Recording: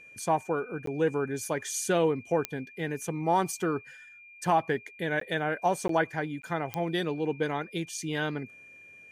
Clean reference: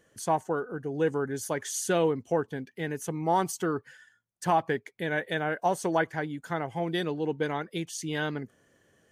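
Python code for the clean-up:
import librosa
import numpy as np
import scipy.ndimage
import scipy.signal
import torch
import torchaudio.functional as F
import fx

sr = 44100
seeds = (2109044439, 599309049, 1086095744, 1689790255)

y = fx.fix_declick_ar(x, sr, threshold=10.0)
y = fx.notch(y, sr, hz=2400.0, q=30.0)
y = fx.fix_interpolate(y, sr, at_s=(0.86, 5.2, 5.88, 6.42), length_ms=13.0)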